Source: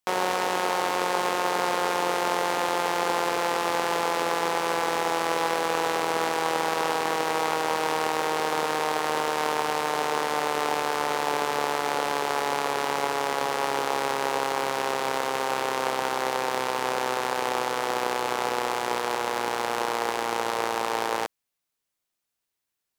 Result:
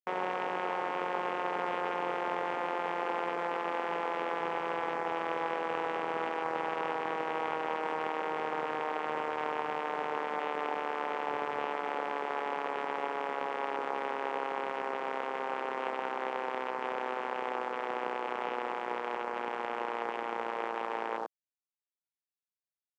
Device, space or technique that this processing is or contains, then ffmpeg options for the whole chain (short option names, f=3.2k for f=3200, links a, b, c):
over-cleaned archive recording: -af "highpass=130,lowpass=6.5k,afwtdn=0.0282,volume=-7.5dB"